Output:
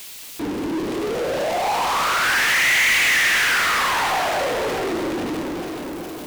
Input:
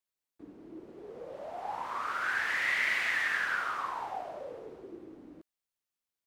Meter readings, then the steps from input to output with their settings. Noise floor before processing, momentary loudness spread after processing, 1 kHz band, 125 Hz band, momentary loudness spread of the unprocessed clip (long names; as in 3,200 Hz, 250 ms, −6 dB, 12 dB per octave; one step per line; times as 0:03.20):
below −85 dBFS, 14 LU, +14.5 dB, can't be measured, 21 LU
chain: high shelf with overshoot 2,000 Hz +6.5 dB, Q 1.5
delay that swaps between a low-pass and a high-pass 206 ms, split 1,200 Hz, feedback 61%, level −5.5 dB
power curve on the samples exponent 0.35
level +2 dB